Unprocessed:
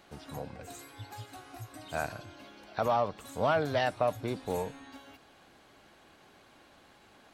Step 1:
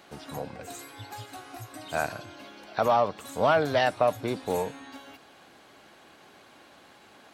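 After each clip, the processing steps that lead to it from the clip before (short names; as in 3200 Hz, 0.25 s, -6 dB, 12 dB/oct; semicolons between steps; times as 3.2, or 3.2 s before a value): HPF 160 Hz 6 dB/oct; gain +5.5 dB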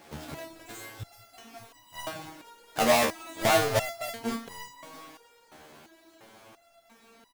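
half-waves squared off; frequency-shifting echo 0.238 s, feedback 54%, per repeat +110 Hz, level -18 dB; stepped resonator 2.9 Hz 77–970 Hz; gain +6 dB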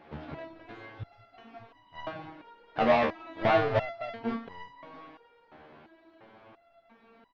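Gaussian blur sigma 2.9 samples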